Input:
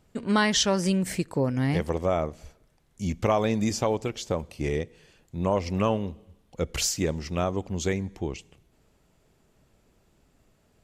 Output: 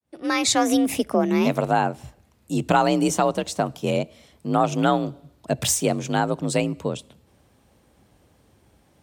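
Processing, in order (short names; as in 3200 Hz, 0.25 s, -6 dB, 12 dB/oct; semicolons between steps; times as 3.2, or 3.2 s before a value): opening faded in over 0.76 s; varispeed +20%; frequency shift +44 Hz; gain +5 dB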